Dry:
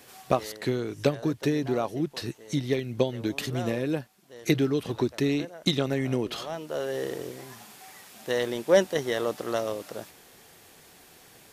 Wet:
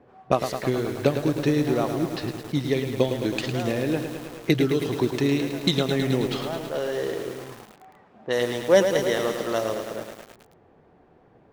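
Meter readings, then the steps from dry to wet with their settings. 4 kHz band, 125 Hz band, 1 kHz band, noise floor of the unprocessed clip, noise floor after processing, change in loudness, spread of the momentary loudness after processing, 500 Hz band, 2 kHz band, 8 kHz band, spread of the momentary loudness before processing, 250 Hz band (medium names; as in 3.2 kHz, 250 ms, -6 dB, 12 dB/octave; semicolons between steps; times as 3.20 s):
+3.5 dB, +3.5 dB, +4.0 dB, -54 dBFS, -57 dBFS, +3.5 dB, 10 LU, +3.5 dB, +3.5 dB, +2.5 dB, 16 LU, +3.5 dB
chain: level-controlled noise filter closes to 730 Hz, open at -23.5 dBFS; bit-crushed delay 107 ms, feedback 80%, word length 7-bit, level -7.5 dB; trim +2.5 dB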